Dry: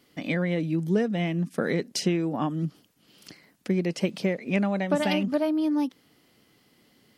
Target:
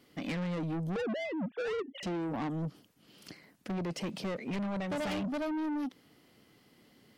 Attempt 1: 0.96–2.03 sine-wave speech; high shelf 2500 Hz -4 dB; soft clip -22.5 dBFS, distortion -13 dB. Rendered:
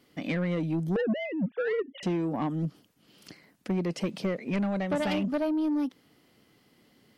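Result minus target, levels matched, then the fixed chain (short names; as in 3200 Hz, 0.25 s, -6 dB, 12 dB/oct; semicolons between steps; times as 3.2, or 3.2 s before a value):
soft clip: distortion -7 dB
0.96–2.03 sine-wave speech; high shelf 2500 Hz -4 dB; soft clip -32 dBFS, distortion -6 dB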